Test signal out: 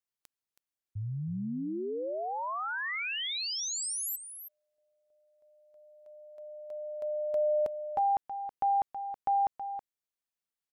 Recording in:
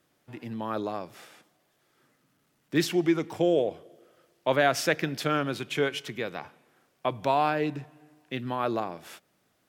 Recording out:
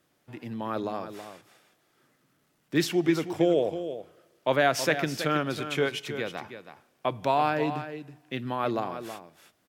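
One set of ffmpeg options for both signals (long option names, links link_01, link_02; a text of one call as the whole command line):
ffmpeg -i in.wav -af "aecho=1:1:323:0.299" out.wav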